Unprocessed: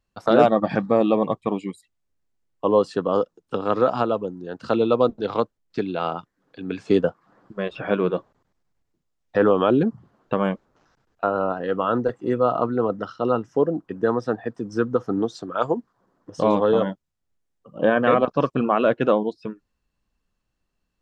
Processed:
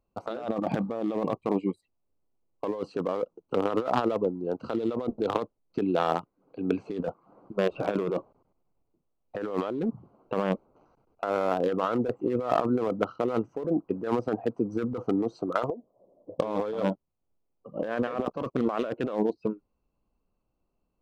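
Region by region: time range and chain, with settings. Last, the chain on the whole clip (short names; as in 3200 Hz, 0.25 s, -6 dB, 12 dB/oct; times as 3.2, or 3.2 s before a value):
15.7–16.4 G.711 law mismatch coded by mu + ladder low-pass 640 Hz, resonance 75% + compressor 4:1, threshold -35 dBFS
whole clip: Wiener smoothing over 25 samples; tone controls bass -7 dB, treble +2 dB; negative-ratio compressor -28 dBFS, ratio -1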